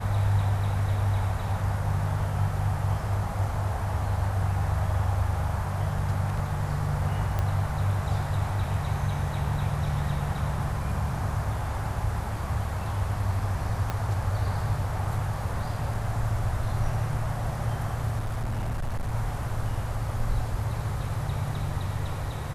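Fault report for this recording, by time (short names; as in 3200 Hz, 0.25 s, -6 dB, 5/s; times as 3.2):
7.39 pop -16 dBFS
13.9 pop -15 dBFS
18.18–19.15 clipped -25.5 dBFS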